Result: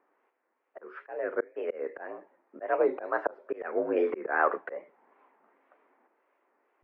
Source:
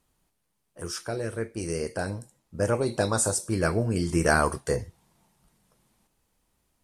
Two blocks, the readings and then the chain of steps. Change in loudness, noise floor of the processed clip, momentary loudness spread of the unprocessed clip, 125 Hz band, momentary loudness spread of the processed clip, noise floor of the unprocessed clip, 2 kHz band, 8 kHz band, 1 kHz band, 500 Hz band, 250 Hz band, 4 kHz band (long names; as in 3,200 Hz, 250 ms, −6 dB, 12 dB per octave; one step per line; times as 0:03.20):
−4.0 dB, −78 dBFS, 12 LU, below −30 dB, 17 LU, −76 dBFS, −3.5 dB, below −40 dB, −1.5 dB, −1.5 dB, −9.0 dB, below −20 dB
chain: single-sideband voice off tune +57 Hz 300–2,100 Hz
volume swells 384 ms
tape wow and flutter 140 cents
level +7.5 dB